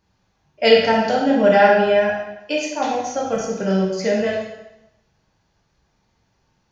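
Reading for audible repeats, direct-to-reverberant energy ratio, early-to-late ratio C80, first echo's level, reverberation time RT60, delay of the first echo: none, -2.5 dB, 4.5 dB, none, 0.90 s, none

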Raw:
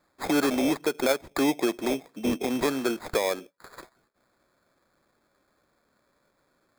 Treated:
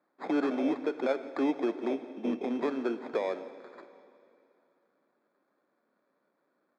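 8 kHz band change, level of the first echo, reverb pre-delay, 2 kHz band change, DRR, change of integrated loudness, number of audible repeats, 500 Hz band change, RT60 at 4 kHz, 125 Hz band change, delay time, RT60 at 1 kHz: under -25 dB, -21.5 dB, 7 ms, -9.0 dB, 11.0 dB, -5.0 dB, 1, -4.0 dB, 2.5 s, under -10 dB, 0.172 s, 2.8 s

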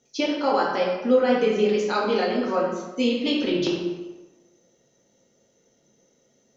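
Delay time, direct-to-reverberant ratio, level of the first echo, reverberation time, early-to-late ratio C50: none, -4.0 dB, none, 1.2 s, 2.0 dB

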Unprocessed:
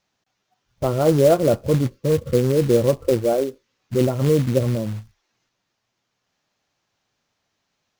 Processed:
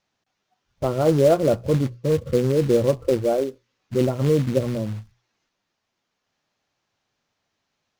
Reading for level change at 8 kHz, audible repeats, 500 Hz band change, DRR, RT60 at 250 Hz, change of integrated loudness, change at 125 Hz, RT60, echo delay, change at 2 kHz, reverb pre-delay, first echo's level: -4.5 dB, none, -1.5 dB, none, none, -2.0 dB, -2.5 dB, none, none, -2.0 dB, none, none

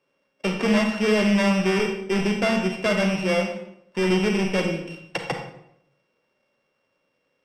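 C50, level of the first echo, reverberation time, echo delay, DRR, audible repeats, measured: 6.0 dB, none, 0.75 s, none, 4.0 dB, none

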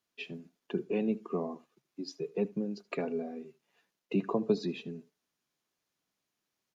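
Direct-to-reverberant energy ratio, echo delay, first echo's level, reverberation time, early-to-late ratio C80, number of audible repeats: none, 77 ms, -22.0 dB, none, none, 1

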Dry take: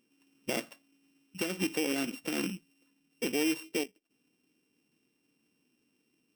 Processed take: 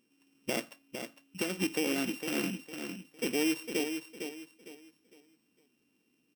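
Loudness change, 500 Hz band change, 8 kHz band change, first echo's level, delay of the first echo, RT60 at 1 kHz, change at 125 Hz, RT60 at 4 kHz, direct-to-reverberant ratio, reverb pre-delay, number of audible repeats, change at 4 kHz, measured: -1.0 dB, +0.5 dB, +0.5 dB, -7.5 dB, 0.456 s, none, +1.0 dB, none, none, none, 3, +0.5 dB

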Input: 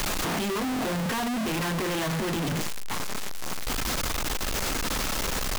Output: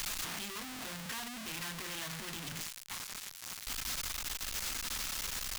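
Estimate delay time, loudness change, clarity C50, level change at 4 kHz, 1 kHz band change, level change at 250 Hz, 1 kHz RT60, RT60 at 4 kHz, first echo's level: none, -9.5 dB, none, -7.0 dB, -15.0 dB, -19.0 dB, none, none, none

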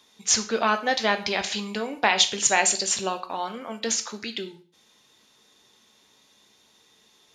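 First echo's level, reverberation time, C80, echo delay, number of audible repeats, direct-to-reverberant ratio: none, 0.40 s, 17.5 dB, none, none, 7.5 dB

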